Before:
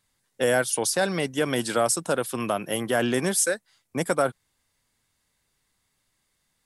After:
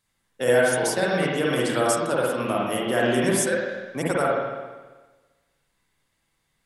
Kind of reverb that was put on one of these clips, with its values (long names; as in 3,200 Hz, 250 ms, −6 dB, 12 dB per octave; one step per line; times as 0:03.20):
spring reverb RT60 1.3 s, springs 49/55 ms, chirp 65 ms, DRR −4.5 dB
level −3 dB